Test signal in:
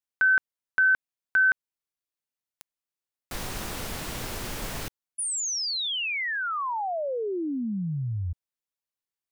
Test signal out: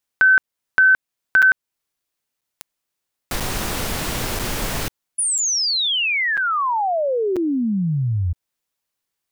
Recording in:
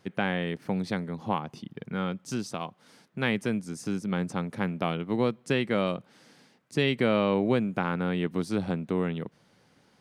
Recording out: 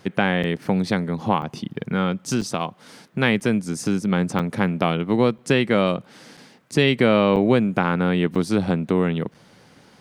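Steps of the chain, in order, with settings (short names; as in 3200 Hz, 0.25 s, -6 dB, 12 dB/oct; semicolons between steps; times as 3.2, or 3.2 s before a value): in parallel at -1 dB: compressor, threshold -35 dBFS; on the sum: crackling interface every 0.99 s, samples 256, zero, from 0.43; gain +6 dB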